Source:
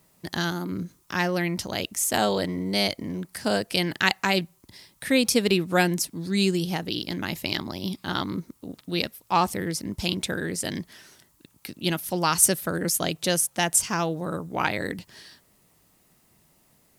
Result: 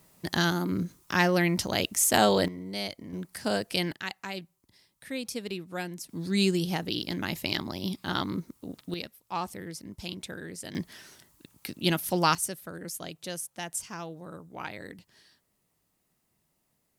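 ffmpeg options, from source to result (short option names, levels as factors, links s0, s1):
-af "asetnsamples=n=441:p=0,asendcmd='2.48 volume volume -10dB;3.13 volume volume -4dB;3.92 volume volume -14dB;6.09 volume volume -2dB;8.94 volume volume -11dB;10.75 volume volume 0dB;12.35 volume volume -13dB',volume=1.19"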